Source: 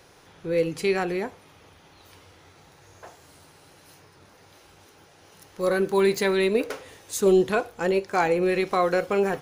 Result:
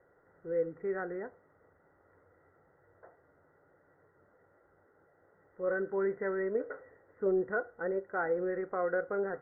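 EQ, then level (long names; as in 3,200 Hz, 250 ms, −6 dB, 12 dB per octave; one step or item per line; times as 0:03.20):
dynamic equaliser 1,500 Hz, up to +5 dB, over −43 dBFS, Q 3.2
Chebyshev low-pass with heavy ripple 2,000 Hz, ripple 9 dB
−7.5 dB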